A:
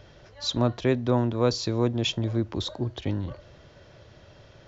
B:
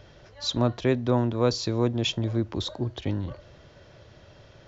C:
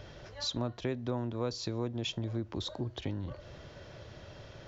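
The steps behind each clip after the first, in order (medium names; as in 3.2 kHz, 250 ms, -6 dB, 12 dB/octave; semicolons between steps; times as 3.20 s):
no audible change
compression 2.5:1, threshold -39 dBFS, peak gain reduction 14.5 dB; trim +2 dB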